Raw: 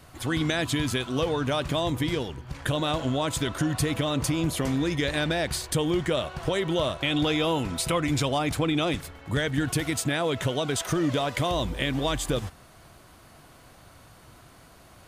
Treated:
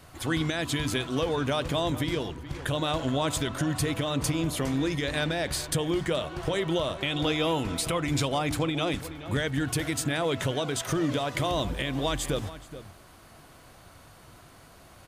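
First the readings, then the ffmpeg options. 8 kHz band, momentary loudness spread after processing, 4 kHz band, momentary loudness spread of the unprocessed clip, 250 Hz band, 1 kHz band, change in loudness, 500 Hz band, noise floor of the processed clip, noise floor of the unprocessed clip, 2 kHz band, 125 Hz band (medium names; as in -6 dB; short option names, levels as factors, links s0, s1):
-1.0 dB, 3 LU, -1.5 dB, 3 LU, -2.0 dB, -1.5 dB, -1.5 dB, -1.5 dB, -53 dBFS, -53 dBFS, -1.5 dB, -1.5 dB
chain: -filter_complex "[0:a]bandreject=f=60:t=h:w=6,bandreject=f=120:t=h:w=6,bandreject=f=180:t=h:w=6,bandreject=f=240:t=h:w=6,bandreject=f=300:t=h:w=6,asplit=2[s0][s1];[s1]adelay=425.7,volume=0.178,highshelf=f=4000:g=-9.58[s2];[s0][s2]amix=inputs=2:normalize=0,alimiter=limit=0.15:level=0:latency=1:release=291"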